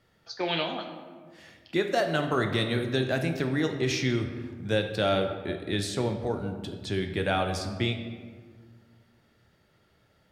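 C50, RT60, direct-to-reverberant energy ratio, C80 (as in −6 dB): 7.5 dB, 1.7 s, 5.0 dB, 9.0 dB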